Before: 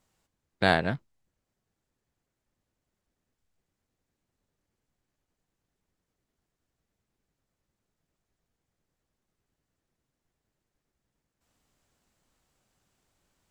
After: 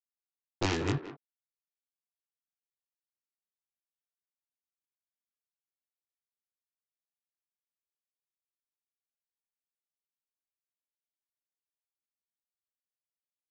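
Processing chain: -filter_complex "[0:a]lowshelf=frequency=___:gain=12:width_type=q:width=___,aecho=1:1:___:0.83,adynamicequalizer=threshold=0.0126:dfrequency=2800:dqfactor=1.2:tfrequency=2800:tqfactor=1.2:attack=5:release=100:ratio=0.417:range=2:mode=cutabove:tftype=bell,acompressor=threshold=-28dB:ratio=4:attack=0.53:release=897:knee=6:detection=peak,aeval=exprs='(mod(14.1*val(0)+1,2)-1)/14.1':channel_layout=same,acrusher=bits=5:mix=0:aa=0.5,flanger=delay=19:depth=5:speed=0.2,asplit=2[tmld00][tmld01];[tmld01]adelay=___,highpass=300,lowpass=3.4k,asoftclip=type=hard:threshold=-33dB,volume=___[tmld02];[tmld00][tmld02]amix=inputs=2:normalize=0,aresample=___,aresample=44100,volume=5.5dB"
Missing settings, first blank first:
460, 3, 2.3, 180, -9dB, 16000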